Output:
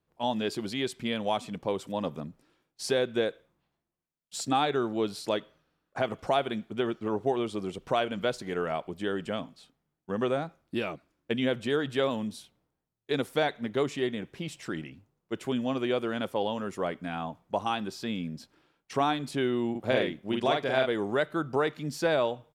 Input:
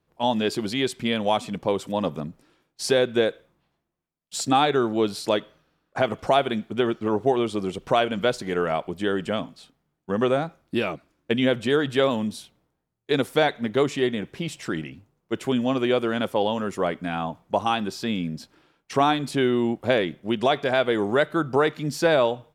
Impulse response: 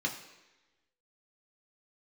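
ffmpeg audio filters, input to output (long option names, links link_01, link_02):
-filter_complex "[0:a]asplit=3[link_01][link_02][link_03];[link_01]afade=type=out:start_time=19.74:duration=0.02[link_04];[link_02]asplit=2[link_05][link_06];[link_06]adelay=46,volume=-2.5dB[link_07];[link_05][link_07]amix=inputs=2:normalize=0,afade=type=in:start_time=19.74:duration=0.02,afade=type=out:start_time=20.85:duration=0.02[link_08];[link_03]afade=type=in:start_time=20.85:duration=0.02[link_09];[link_04][link_08][link_09]amix=inputs=3:normalize=0,volume=-6.5dB"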